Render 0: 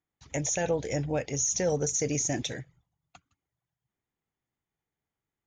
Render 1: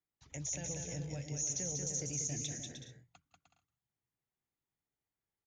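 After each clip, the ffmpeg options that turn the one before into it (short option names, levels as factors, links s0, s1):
-filter_complex "[0:a]acrossover=split=210|3000[s0][s1][s2];[s1]acompressor=threshold=0.00282:ratio=2[s3];[s0][s3][s2]amix=inputs=3:normalize=0,asplit=2[s4][s5];[s5]aecho=0:1:190|304|372.4|413.4|438.1:0.631|0.398|0.251|0.158|0.1[s6];[s4][s6]amix=inputs=2:normalize=0,volume=0.376"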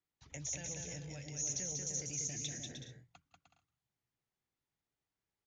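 -filter_complex "[0:a]lowpass=6600,acrossover=split=1200[s0][s1];[s0]alimiter=level_in=8.41:limit=0.0631:level=0:latency=1:release=92,volume=0.119[s2];[s2][s1]amix=inputs=2:normalize=0,volume=1.19"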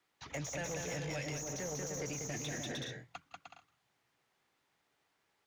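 -filter_complex "[0:a]acrossover=split=500|1800[s0][s1][s2];[s2]acompressor=threshold=0.00398:ratio=6[s3];[s0][s1][s3]amix=inputs=3:normalize=0,asplit=2[s4][s5];[s5]highpass=f=720:p=1,volume=11.2,asoftclip=type=tanh:threshold=0.0237[s6];[s4][s6]amix=inputs=2:normalize=0,lowpass=f=2200:p=1,volume=0.501,volume=1.68"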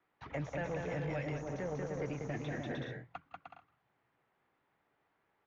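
-af "lowpass=1800,volume=1.41"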